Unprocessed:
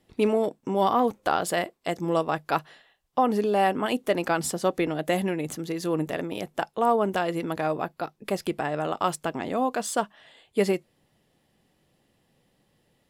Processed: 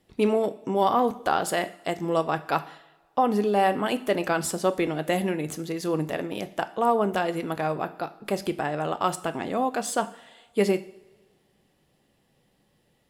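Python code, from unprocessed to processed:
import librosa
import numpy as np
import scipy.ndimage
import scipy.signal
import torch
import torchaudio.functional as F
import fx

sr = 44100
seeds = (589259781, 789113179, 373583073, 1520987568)

y = fx.rev_double_slope(x, sr, seeds[0], early_s=0.54, late_s=1.7, knee_db=-17, drr_db=10.5)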